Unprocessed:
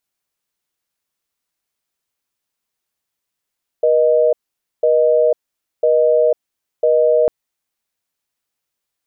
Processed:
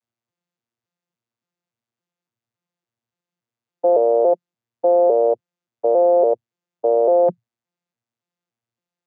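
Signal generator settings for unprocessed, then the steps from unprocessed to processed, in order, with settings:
call progress tone busy tone, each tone -13 dBFS 3.45 s
vocoder on a broken chord bare fifth, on A#2, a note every 283 ms

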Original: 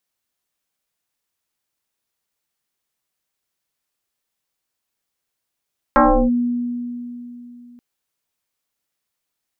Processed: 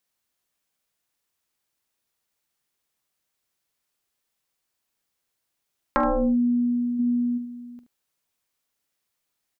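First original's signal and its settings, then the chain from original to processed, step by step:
FM tone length 1.83 s, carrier 242 Hz, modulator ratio 1.13, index 4.7, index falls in 0.34 s linear, decay 3.26 s, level -8 dB
time-frequency box 7.00–7.38 s, 200–1900 Hz +9 dB; compression 4:1, threshold -22 dBFS; on a send: early reflections 45 ms -16.5 dB, 74 ms -13 dB

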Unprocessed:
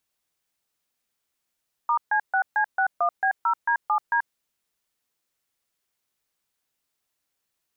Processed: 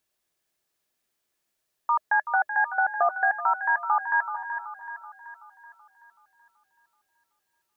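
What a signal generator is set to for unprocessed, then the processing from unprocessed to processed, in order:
DTMF "*C6C61B0D7D", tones 85 ms, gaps 138 ms, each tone -21.5 dBFS
small resonant body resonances 370/620/1700 Hz, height 7 dB; on a send: two-band feedback delay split 810 Hz, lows 223 ms, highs 379 ms, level -9 dB

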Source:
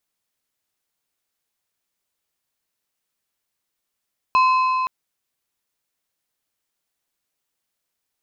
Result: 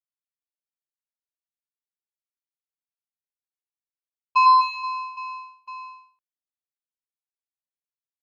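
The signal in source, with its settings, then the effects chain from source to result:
metal hit plate, length 0.52 s, lowest mode 1.03 kHz, decay 3.87 s, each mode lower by 10 dB, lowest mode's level -12 dB
gate -18 dBFS, range -33 dB; reverse bouncing-ball echo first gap 100 ms, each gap 1.5×, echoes 5

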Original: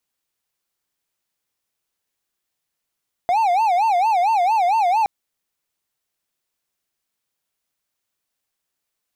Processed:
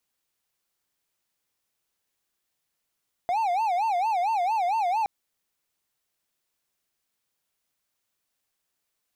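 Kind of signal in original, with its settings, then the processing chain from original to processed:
siren wail 695–907 Hz 4.4 per s triangle -12.5 dBFS 1.77 s
peak limiter -20 dBFS

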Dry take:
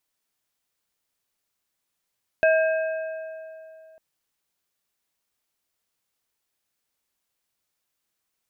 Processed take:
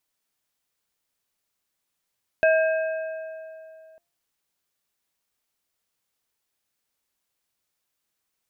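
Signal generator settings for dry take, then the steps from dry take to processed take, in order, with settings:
metal hit plate, lowest mode 640 Hz, modes 3, decay 2.75 s, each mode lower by 6 dB, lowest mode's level -15 dB
de-hum 343.3 Hz, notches 8

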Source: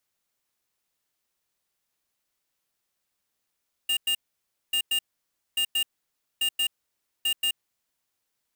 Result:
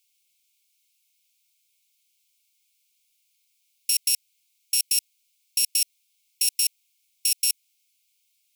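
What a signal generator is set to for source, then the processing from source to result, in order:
beep pattern square 2.82 kHz, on 0.08 s, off 0.10 s, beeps 2, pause 0.58 s, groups 5, -24.5 dBFS
bit-reversed sample order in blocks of 32 samples; in parallel at +1.5 dB: compressor with a negative ratio -29 dBFS, ratio -0.5; on the sum: brick-wall FIR high-pass 2.1 kHz

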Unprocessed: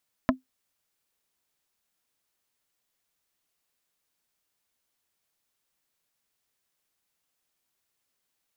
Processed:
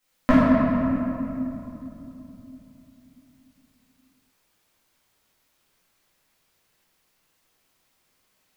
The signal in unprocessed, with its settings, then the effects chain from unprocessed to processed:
wood hit plate, lowest mode 259 Hz, decay 0.14 s, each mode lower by 1.5 dB, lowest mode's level -15 dB
simulated room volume 150 m³, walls hard, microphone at 2.1 m

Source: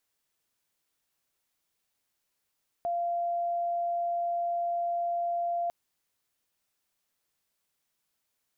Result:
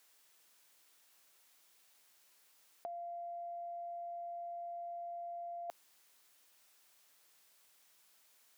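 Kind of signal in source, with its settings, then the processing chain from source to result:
tone sine 691 Hz -27 dBFS 2.85 s
high-pass 540 Hz 6 dB/octave; compressor with a negative ratio -40 dBFS, ratio -0.5

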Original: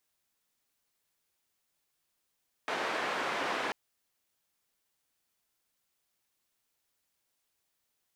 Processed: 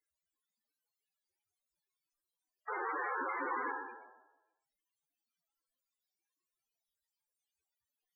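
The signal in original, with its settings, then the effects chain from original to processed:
noise band 330–1700 Hz, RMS -33.5 dBFS 1.04 s
spectral sustain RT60 1.03 s; dynamic bell 650 Hz, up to -8 dB, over -52 dBFS, Q 4.4; loudest bins only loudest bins 16

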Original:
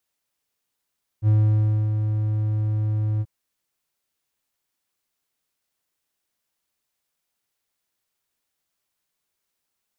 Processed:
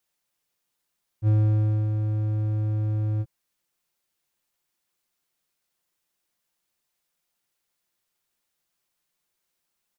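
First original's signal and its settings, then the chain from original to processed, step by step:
ADSR triangle 107 Hz, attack 56 ms, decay 616 ms, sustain -6.5 dB, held 1.99 s, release 44 ms -11.5 dBFS
comb 5.7 ms, depth 32%

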